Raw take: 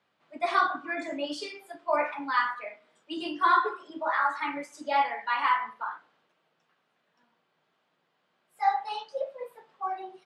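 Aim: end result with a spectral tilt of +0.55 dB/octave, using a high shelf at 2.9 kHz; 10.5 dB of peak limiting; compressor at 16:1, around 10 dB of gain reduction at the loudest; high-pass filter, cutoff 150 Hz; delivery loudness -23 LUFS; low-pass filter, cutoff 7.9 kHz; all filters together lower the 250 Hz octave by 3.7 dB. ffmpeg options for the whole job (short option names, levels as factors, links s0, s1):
-af "highpass=150,lowpass=7900,equalizer=f=250:t=o:g=-4.5,highshelf=f=2900:g=-8,acompressor=threshold=0.0355:ratio=16,volume=7.5,alimiter=limit=0.211:level=0:latency=1"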